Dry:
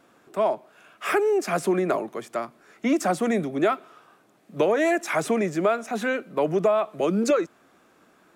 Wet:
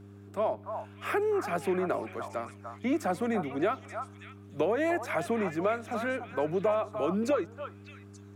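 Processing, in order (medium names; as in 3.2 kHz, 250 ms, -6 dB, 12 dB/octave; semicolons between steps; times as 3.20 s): mains buzz 100 Hz, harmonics 4, -43 dBFS -4 dB/octave; dynamic bell 6.9 kHz, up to -7 dB, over -50 dBFS, Q 0.82; repeats whose band climbs or falls 294 ms, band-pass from 1 kHz, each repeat 1.4 oct, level -3.5 dB; trim -6.5 dB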